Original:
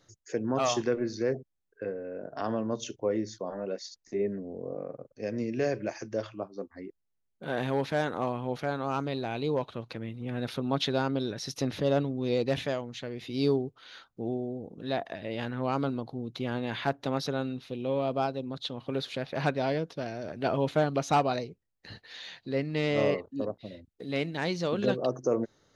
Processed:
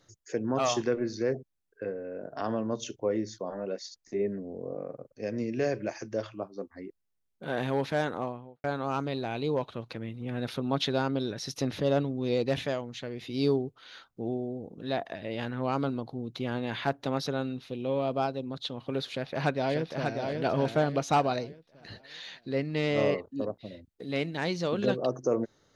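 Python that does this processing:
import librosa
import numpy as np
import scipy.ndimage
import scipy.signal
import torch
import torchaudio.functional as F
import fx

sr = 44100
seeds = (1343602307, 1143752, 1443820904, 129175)

y = fx.studio_fade_out(x, sr, start_s=8.04, length_s=0.6)
y = fx.echo_throw(y, sr, start_s=19.1, length_s=1.14, ms=590, feedback_pct=35, wet_db=-4.5)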